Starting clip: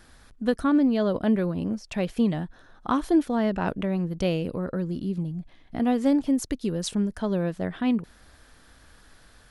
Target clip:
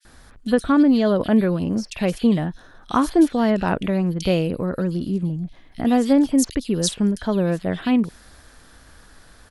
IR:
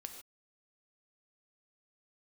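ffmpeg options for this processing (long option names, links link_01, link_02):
-filter_complex "[0:a]acrossover=split=2900[link_01][link_02];[link_01]adelay=50[link_03];[link_03][link_02]amix=inputs=2:normalize=0,adynamicequalizer=threshold=0.00708:dfrequency=2200:dqfactor=0.7:tfrequency=2200:tqfactor=0.7:attack=5:release=100:ratio=0.375:range=2.5:mode=boostabove:tftype=highshelf,volume=5.5dB"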